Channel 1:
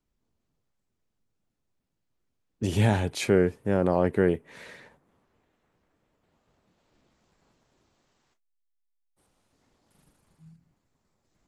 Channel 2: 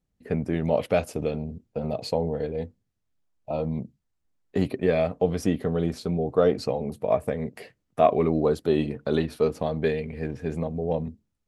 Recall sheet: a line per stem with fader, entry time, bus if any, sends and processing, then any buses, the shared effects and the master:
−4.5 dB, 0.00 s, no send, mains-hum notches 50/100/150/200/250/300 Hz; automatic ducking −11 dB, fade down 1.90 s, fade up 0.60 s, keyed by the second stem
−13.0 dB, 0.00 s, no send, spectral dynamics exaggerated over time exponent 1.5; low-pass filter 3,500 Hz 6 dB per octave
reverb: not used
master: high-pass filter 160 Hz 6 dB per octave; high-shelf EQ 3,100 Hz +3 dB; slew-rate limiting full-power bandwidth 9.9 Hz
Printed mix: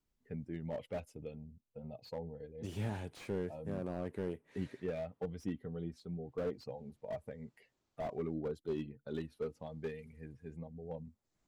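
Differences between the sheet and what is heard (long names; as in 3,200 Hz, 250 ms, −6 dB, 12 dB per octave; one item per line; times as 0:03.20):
stem 1: missing mains-hum notches 50/100/150/200/250/300 Hz
master: missing high-pass filter 160 Hz 6 dB per octave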